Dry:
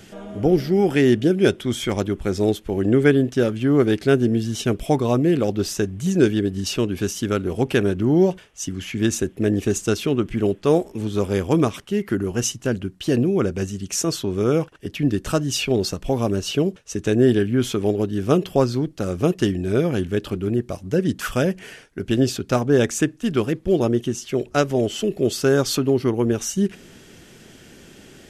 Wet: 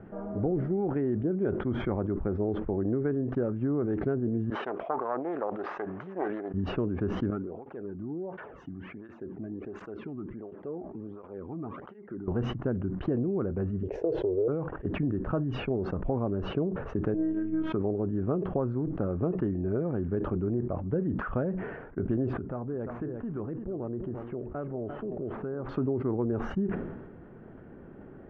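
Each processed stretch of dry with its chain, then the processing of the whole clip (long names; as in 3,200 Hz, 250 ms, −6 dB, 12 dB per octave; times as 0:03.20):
0:04.50–0:06.54: phase distortion by the signal itself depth 0.29 ms + high-pass filter 740 Hz
0:07.30–0:12.28: downward compressor 3 to 1, threshold −37 dBFS + through-zero flanger with one copy inverted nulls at 1.4 Hz, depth 2.3 ms
0:13.83–0:14.48: parametric band 460 Hz +14.5 dB 0.85 octaves + phaser with its sweep stopped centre 510 Hz, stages 4
0:17.14–0:17.73: high-pass filter 120 Hz + phases set to zero 318 Hz
0:22.33–0:25.69: running median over 9 samples + downward compressor 3 to 1, threshold −35 dBFS + single-tap delay 346 ms −13.5 dB
whole clip: downward compressor, threshold −25 dBFS; low-pass filter 1,300 Hz 24 dB per octave; level that may fall only so fast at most 45 dB per second; level −1.5 dB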